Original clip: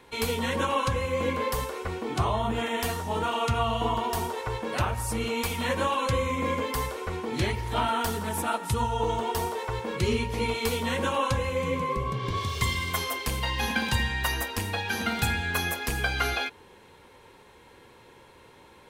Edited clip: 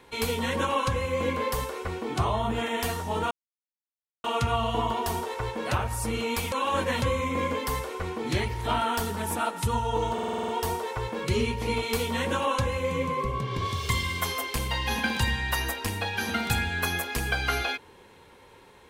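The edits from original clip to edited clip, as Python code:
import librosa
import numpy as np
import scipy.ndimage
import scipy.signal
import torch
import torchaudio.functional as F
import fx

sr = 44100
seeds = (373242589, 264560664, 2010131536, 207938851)

y = fx.edit(x, sr, fx.insert_silence(at_s=3.31, length_s=0.93),
    fx.reverse_span(start_s=5.59, length_s=0.5),
    fx.stutter(start_s=9.2, slice_s=0.05, count=8), tone=tone)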